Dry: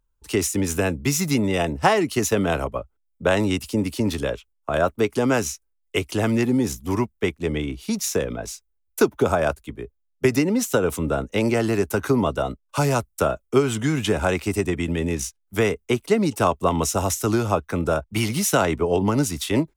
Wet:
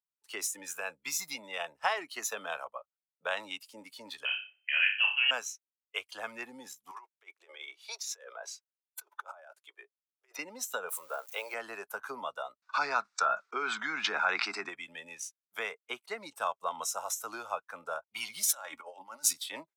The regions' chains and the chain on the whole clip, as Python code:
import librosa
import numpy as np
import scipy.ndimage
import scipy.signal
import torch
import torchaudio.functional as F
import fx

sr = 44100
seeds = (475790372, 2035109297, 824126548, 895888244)

y = fx.chain(x, sr, fx.freq_invert(carrier_hz=3100),
    fx.room_flutter(wall_m=5.2, rt60_s=0.46), at=(4.25, 5.31))
y = fx.chain(y, sr, fx.ellip_highpass(hz=360.0, order=4, stop_db=40),
    fx.high_shelf(hz=7900.0, db=-8.0),
    fx.over_compress(threshold_db=-33.0, ratio=-1.0), at=(6.91, 10.39))
y = fx.chain(y, sr, fx.crossing_spikes(level_db=-26.0),
    fx.low_shelf_res(hz=330.0, db=-7.5, q=1.5), at=(10.89, 11.54))
y = fx.chain(y, sr, fx.cabinet(low_hz=190.0, low_slope=12, high_hz=5400.0, hz=(200.0, 560.0, 1400.0, 3100.0), db=(5, -8, 6, -9)),
    fx.env_flatten(amount_pct=70), at=(12.62, 14.69))
y = fx.chain(y, sr, fx.over_compress(threshold_db=-25.0, ratio=-0.5),
    fx.high_shelf(hz=3100.0, db=5.5),
    fx.comb(ms=3.6, depth=0.41), at=(18.43, 19.33))
y = scipy.signal.sosfilt(scipy.signal.butter(2, 930.0, 'highpass', fs=sr, output='sos'), y)
y = fx.noise_reduce_blind(y, sr, reduce_db=11)
y = F.gain(torch.from_numpy(y), -8.0).numpy()